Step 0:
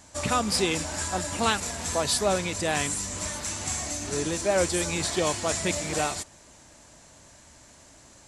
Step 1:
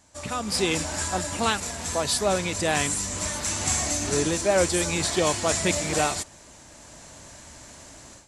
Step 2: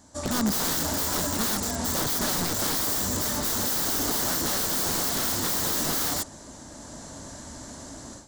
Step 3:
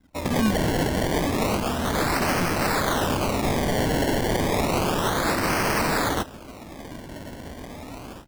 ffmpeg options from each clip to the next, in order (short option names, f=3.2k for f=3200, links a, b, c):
-af "dynaudnorm=f=370:g=3:m=14dB,volume=-7dB"
-af "acontrast=56,aeval=exprs='(mod(8.41*val(0)+1,2)-1)/8.41':c=same,equalizer=f=250:t=o:w=0.67:g=7,equalizer=f=2.5k:t=o:w=0.67:g=-12,equalizer=f=10k:t=o:w=0.67:g=-4,volume=-1.5dB"
-af "anlmdn=0.00631,acrusher=samples=24:mix=1:aa=0.000001:lfo=1:lforange=24:lforate=0.31,volume=3.5dB"